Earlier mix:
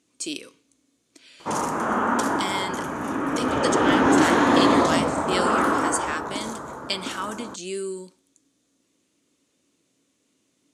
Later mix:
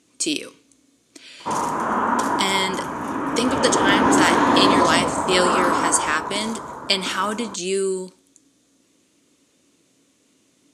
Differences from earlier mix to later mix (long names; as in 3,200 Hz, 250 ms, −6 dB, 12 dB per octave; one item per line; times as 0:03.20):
speech +8.0 dB
background: add parametric band 990 Hz +7.5 dB 0.21 octaves